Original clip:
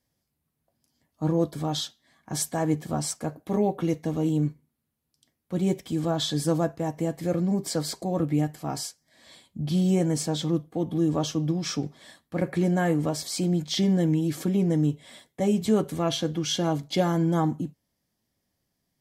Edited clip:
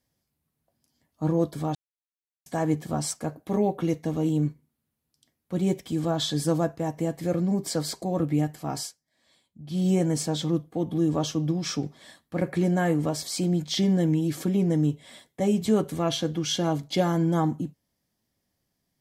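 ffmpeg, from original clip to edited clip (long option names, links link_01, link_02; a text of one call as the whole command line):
ffmpeg -i in.wav -filter_complex "[0:a]asplit=5[link_01][link_02][link_03][link_04][link_05];[link_01]atrim=end=1.75,asetpts=PTS-STARTPTS,afade=type=out:start_time=1.746:duration=0.004:curve=hsin[link_06];[link_02]atrim=start=1.75:end=2.46,asetpts=PTS-STARTPTS,volume=0[link_07];[link_03]atrim=start=2.46:end=9.03,asetpts=PTS-STARTPTS,afade=type=in:duration=0.004:curve=hsin,afade=type=out:start_time=6.36:duration=0.21:silence=0.223872[link_08];[link_04]atrim=start=9.03:end=9.66,asetpts=PTS-STARTPTS,volume=-13dB[link_09];[link_05]atrim=start=9.66,asetpts=PTS-STARTPTS,afade=type=in:duration=0.21:silence=0.223872[link_10];[link_06][link_07][link_08][link_09][link_10]concat=n=5:v=0:a=1" out.wav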